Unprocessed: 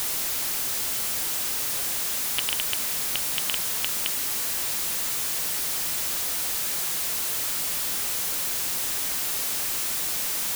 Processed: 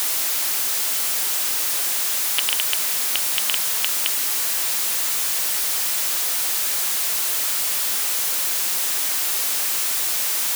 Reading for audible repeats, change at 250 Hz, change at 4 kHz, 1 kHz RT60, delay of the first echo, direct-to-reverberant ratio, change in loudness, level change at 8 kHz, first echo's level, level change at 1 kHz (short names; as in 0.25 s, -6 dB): none, -1.5 dB, +5.5 dB, none, none, none, +5.5 dB, +5.5 dB, none, +4.5 dB